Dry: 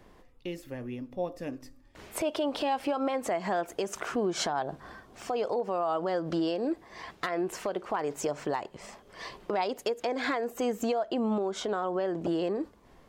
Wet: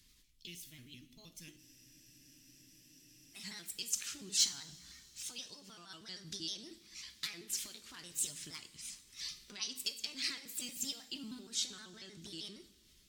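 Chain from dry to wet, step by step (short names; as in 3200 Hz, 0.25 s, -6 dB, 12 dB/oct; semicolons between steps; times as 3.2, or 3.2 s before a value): trilling pitch shifter +3 st, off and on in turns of 78 ms; EQ curve 250 Hz 0 dB, 720 Hz -23 dB, 4200 Hz +9 dB; hard clip -17.5 dBFS, distortion -25 dB; passive tone stack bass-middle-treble 5-5-5; two-slope reverb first 0.55 s, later 3.6 s, from -18 dB, DRR 9 dB; spectral freeze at 1.61, 1.75 s; gain +3 dB; AAC 96 kbps 44100 Hz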